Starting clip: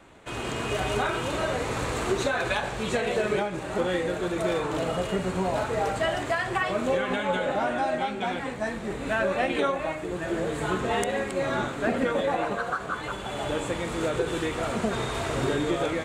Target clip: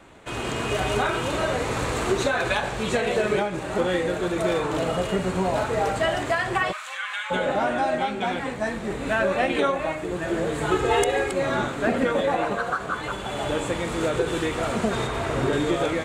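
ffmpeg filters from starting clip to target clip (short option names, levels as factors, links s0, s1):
-filter_complex "[0:a]asplit=3[s0][s1][s2];[s0]afade=t=out:st=6.71:d=0.02[s3];[s1]highpass=f=1200:w=0.5412,highpass=f=1200:w=1.3066,afade=t=in:st=6.71:d=0.02,afade=t=out:st=7.3:d=0.02[s4];[s2]afade=t=in:st=7.3:d=0.02[s5];[s3][s4][s5]amix=inputs=3:normalize=0,asettb=1/sr,asplit=3[s6][s7][s8];[s6]atrim=end=10.714[s9];[s7]atrim=start=10.71:end=11.33,asetpts=PTS-STARTPTS,afade=t=in:d=0.004:c=qsin,afade=t=out:st=0.616:d=0.004:c=qsin,aecho=1:1:2.4:0.82,atrim=end_sample=27342[s10];[s8]atrim=start=11.326[s11];[s9][s10]acrossfade=d=0.004:c1=hsin:c2=qsin[s12];[s12][s11]acrossfade=d=0.004:c1=qsin:c2=hsin,asettb=1/sr,asplit=3[s13][s14][s15];[s13]atrim=end=15.074[s16];[s14]atrim=start=15.07:end=15.53,asetpts=PTS-STARTPTS,afade=t=in:d=0.004:c=qsin,afade=t=out:st=0.456:d=0.004:c=qsin,acrossover=split=2700[s17][s18];[s18]acompressor=threshold=0.00631:ratio=4:attack=1:release=60[s19];[s17][s19]amix=inputs=2:normalize=0[s20];[s15]atrim=start=15.526[s21];[s16][s20]acrossfade=d=0.004:c1=hsin:c2=qsin[s22];[s22][s21]acrossfade=d=0.004:c1=qsin:c2=hsin,volume=1.41"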